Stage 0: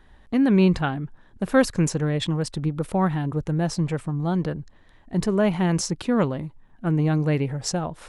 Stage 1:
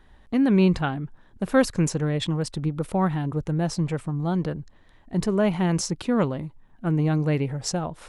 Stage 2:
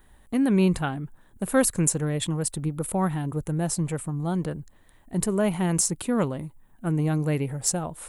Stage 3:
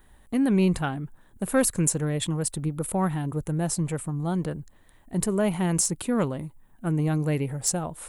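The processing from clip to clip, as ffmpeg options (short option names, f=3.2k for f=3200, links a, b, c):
-af "equalizer=f=1.7k:w=7.6:g=-2,volume=-1dB"
-af "aexciter=amount=5.5:drive=7.6:freq=7.5k,volume=-2dB"
-af "asoftclip=type=tanh:threshold=-10.5dB"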